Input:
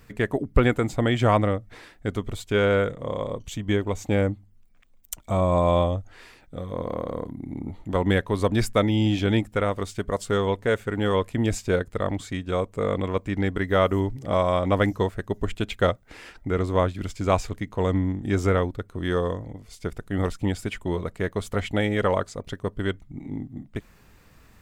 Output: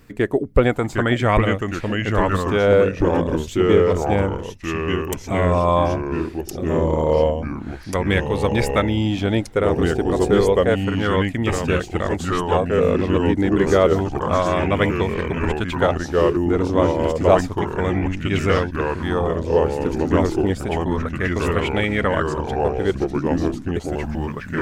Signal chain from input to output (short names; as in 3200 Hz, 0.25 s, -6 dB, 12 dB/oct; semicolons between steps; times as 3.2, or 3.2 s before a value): echoes that change speed 0.735 s, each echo -2 st, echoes 3; LFO bell 0.3 Hz 300–2600 Hz +8 dB; gain +1 dB